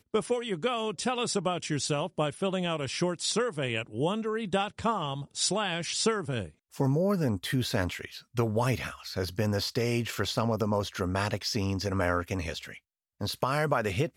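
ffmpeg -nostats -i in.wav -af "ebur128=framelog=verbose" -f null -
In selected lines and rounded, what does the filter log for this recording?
Integrated loudness:
  I:         -29.9 LUFS
  Threshold: -40.0 LUFS
Loudness range:
  LRA:         1.2 LU
  Threshold: -50.0 LUFS
  LRA low:   -30.6 LUFS
  LRA high:  -29.4 LUFS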